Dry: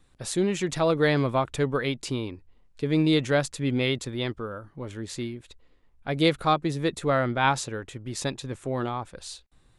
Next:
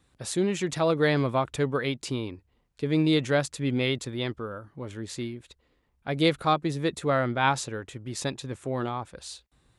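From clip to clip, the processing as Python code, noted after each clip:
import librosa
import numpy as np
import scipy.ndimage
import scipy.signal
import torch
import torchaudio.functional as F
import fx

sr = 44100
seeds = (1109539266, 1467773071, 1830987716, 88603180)

y = scipy.signal.sosfilt(scipy.signal.butter(2, 45.0, 'highpass', fs=sr, output='sos'), x)
y = F.gain(torch.from_numpy(y), -1.0).numpy()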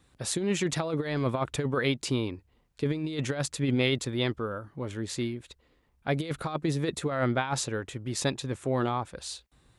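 y = fx.over_compress(x, sr, threshold_db=-26.0, ratio=-0.5)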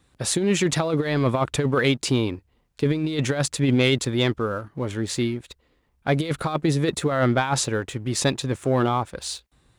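y = fx.leveller(x, sr, passes=1)
y = F.gain(torch.from_numpy(y), 3.5).numpy()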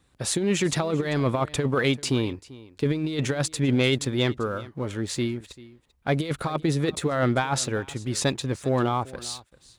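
y = x + 10.0 ** (-20.0 / 20.0) * np.pad(x, (int(391 * sr / 1000.0), 0))[:len(x)]
y = F.gain(torch.from_numpy(y), -2.5).numpy()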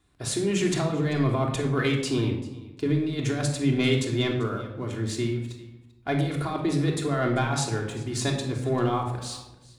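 y = fx.room_shoebox(x, sr, seeds[0], volume_m3=2400.0, walls='furnished', distance_m=3.2)
y = F.gain(torch.from_numpy(y), -5.0).numpy()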